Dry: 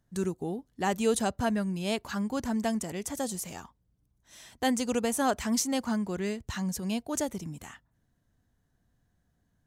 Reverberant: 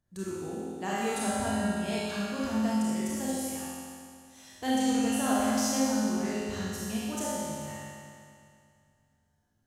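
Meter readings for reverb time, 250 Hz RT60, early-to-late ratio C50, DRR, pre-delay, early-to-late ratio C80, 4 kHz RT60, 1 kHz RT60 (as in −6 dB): 2.3 s, 2.3 s, −5.0 dB, −8.0 dB, 27 ms, −2.5 dB, 2.3 s, 2.3 s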